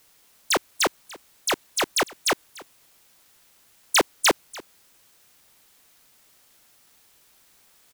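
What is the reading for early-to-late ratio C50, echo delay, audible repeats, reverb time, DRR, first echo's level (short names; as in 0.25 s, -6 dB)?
none, 0.291 s, 1, none, none, -20.5 dB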